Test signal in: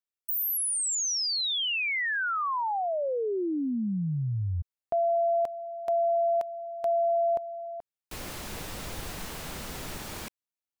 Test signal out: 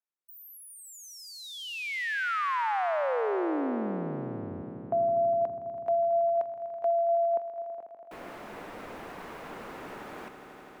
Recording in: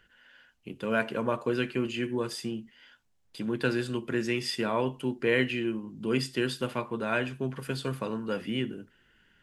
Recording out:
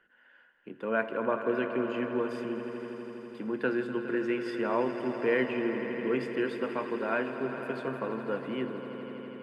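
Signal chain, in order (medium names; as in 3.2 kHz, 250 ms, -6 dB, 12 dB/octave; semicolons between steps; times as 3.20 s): three-band isolator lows -19 dB, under 210 Hz, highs -20 dB, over 2.2 kHz; echo with a slow build-up 82 ms, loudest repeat 5, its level -14 dB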